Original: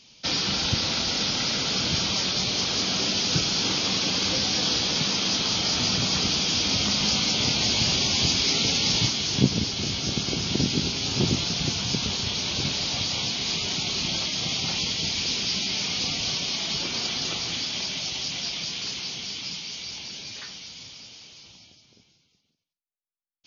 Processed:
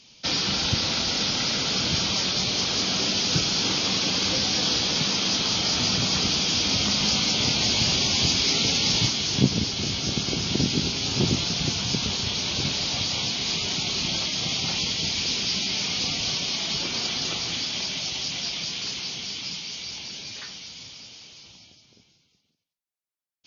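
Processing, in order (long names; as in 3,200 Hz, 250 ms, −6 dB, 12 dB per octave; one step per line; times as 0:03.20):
harmonic generator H 5 −35 dB, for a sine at −4.5 dBFS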